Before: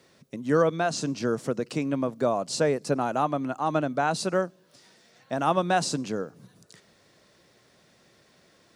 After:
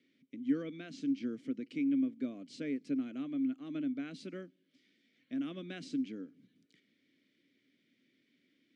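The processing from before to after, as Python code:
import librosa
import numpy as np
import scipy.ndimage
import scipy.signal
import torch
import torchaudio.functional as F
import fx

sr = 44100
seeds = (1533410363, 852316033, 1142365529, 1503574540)

y = fx.vowel_filter(x, sr, vowel='i')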